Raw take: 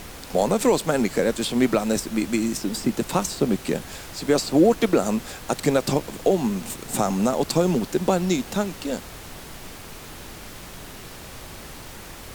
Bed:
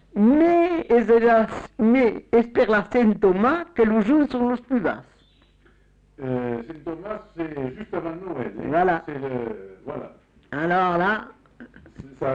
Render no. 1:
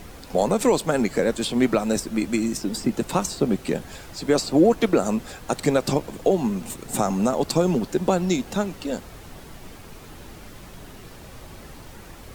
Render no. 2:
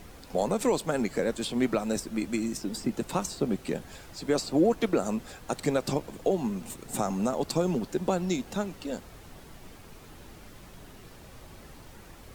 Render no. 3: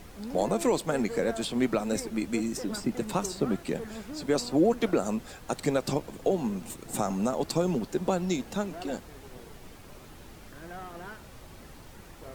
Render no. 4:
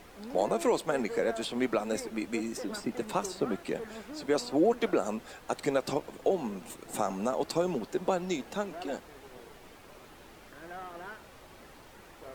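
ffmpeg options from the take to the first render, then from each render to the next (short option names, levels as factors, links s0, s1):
-af "afftdn=nr=7:nf=-40"
-af "volume=0.473"
-filter_complex "[1:a]volume=0.075[s0];[0:a][s0]amix=inputs=2:normalize=0"
-af "bass=f=250:g=-10,treble=f=4000:g=-5"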